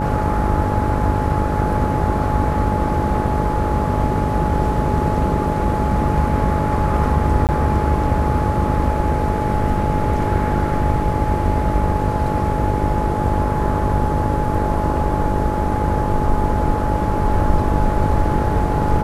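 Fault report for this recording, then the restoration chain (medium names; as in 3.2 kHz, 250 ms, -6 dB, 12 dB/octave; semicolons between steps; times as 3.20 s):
buzz 50 Hz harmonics 13 -23 dBFS
whine 850 Hz -23 dBFS
7.47–7.49 s: dropout 18 ms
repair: band-stop 850 Hz, Q 30; de-hum 50 Hz, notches 13; interpolate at 7.47 s, 18 ms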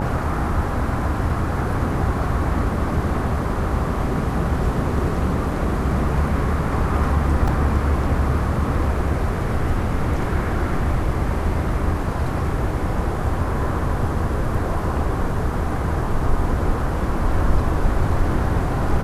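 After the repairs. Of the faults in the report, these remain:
nothing left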